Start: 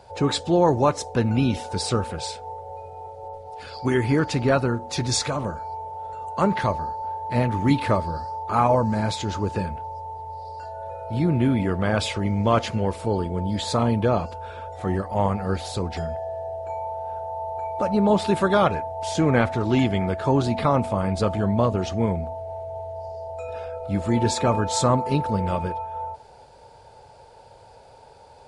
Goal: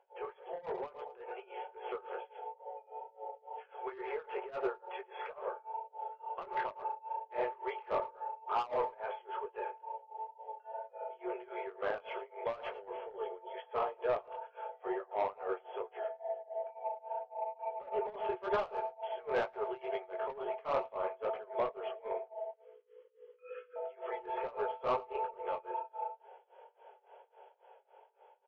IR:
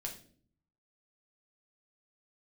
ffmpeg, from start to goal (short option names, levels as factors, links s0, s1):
-filter_complex "[0:a]asettb=1/sr,asplit=3[s0][s1][s2];[s0]atrim=end=22.514[s3];[s1]atrim=start=22.51:end=23.76,asetpts=PTS-STARTPTS,afade=t=in:d=0.004:c=qsin,afade=t=out:st=1.246:d=0.004:c=qsin,asuperstop=centerf=740:order=12:qfactor=1.3[s4];[s2]atrim=start=23.756[s5];[s3][s4]acrossfade=d=0.004:c1=hsin:c2=qsin[s6];[s6][s5]acrossfade=d=0.004:c1=qsin:c2=hsin,flanger=delay=17.5:depth=5.1:speed=2.2,afftfilt=real='re*between(b*sr/4096,360,3400)':imag='im*between(b*sr/4096,360,3400)':win_size=4096:overlap=0.75,acrossover=split=2400[s7][s8];[s7]asoftclip=type=tanh:threshold=0.0841[s9];[s8]acompressor=threshold=0.00112:ratio=16[s10];[s9][s10]amix=inputs=2:normalize=0,adynamicequalizer=threshold=0.00501:dfrequency=1800:dqfactor=2.1:tfrequency=1800:tqfactor=2.1:attack=5:release=100:ratio=0.375:range=2.5:mode=cutabove:tftype=bell,aecho=1:1:111|222|333:0.178|0.048|0.013,tremolo=f=3.6:d=0.93,dynaudnorm=f=150:g=17:m=1.78,volume=0.422"